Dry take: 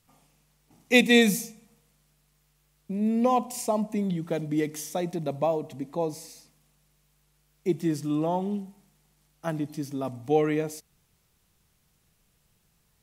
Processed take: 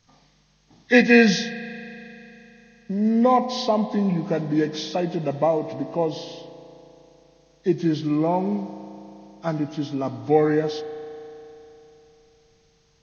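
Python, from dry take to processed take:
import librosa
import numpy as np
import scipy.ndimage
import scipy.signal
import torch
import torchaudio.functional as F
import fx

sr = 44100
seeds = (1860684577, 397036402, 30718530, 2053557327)

y = fx.freq_compress(x, sr, knee_hz=1200.0, ratio=1.5)
y = fx.rev_spring(y, sr, rt60_s=3.4, pass_ms=(35,), chirp_ms=35, drr_db=11.5)
y = y * 10.0 ** (5.0 / 20.0)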